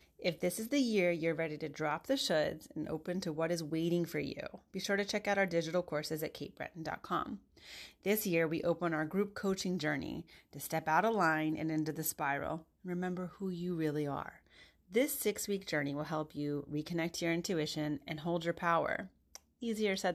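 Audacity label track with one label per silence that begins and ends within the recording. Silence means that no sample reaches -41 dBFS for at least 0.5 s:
14.290000	14.940000	silence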